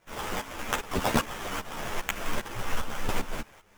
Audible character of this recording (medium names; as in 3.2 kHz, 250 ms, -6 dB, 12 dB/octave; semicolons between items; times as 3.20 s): aliases and images of a low sample rate 4.3 kHz, jitter 20%; tremolo saw up 2.5 Hz, depth 85%; a quantiser's noise floor 12-bit, dither none; a shimmering, thickened sound